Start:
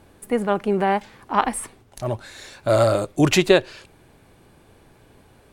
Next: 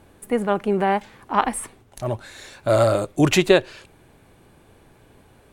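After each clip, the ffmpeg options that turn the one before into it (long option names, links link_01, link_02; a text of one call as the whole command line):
ffmpeg -i in.wav -af "equalizer=frequency=4900:width_type=o:width=0.5:gain=-3" out.wav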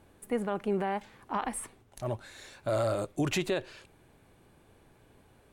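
ffmpeg -i in.wav -af "alimiter=limit=-12dB:level=0:latency=1:release=48,volume=-8dB" out.wav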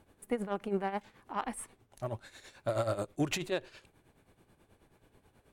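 ffmpeg -i in.wav -af "tremolo=f=9.3:d=0.69,aeval=exprs='0.106*(cos(1*acos(clip(val(0)/0.106,-1,1)))-cos(1*PI/2))+0.00237*(cos(7*acos(clip(val(0)/0.106,-1,1)))-cos(7*PI/2))':channel_layout=same" out.wav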